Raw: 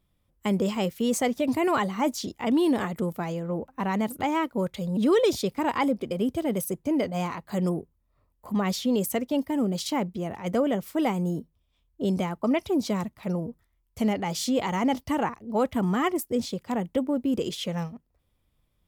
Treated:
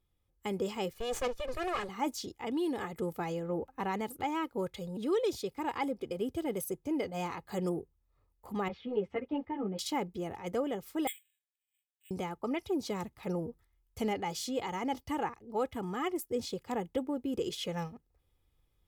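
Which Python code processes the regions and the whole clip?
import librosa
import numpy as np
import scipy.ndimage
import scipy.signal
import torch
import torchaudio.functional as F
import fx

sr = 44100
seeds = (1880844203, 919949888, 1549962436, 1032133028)

y = fx.chain(x, sr, fx.lower_of_two(delay_ms=1.7),
    fx.high_shelf(hz=11000.0, db=-4.5),
    fx.doppler_dist(depth_ms=0.14), at=(0.93, 1.89))
y = fx.chain(y, sr, fx.lowpass(hz=2600.0, slope=24),
    fx.ensemble(), at=(8.68, 9.79))
y = fx.chain(y, sr, fx.cheby_ripple_highpass(hz=1700.0, ripple_db=3),
    fx.resample_bad(factor=8, down='filtered', up='zero_stuff'), at=(11.07, 12.11))
y = y + 0.47 * np.pad(y, (int(2.4 * sr / 1000.0), 0))[:len(y)]
y = fx.rider(y, sr, range_db=4, speed_s=0.5)
y = y * librosa.db_to_amplitude(-8.0)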